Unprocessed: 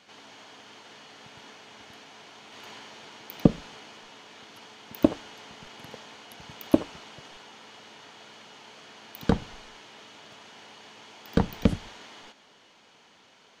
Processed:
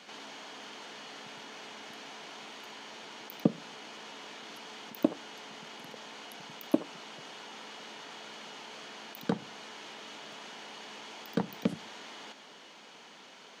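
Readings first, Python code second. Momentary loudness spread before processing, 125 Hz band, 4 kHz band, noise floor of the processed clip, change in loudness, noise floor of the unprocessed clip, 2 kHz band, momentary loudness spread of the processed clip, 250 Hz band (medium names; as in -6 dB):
21 LU, -10.5 dB, +0.5 dB, -53 dBFS, -11.5 dB, -58 dBFS, -0.5 dB, 13 LU, -7.0 dB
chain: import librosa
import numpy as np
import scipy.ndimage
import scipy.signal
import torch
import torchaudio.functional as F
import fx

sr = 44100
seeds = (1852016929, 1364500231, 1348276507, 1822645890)

p1 = scipy.signal.sosfilt(scipy.signal.butter(4, 160.0, 'highpass', fs=sr, output='sos'), x)
p2 = fx.over_compress(p1, sr, threshold_db=-51.0, ratio=-1.0)
p3 = p1 + F.gain(torch.from_numpy(p2), -1.0).numpy()
y = F.gain(torch.from_numpy(p3), -6.5).numpy()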